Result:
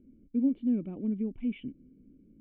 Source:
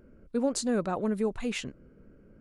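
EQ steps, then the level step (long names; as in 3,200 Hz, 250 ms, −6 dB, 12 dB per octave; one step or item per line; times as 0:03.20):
formant resonators in series i
high-frequency loss of the air 340 metres
+5.5 dB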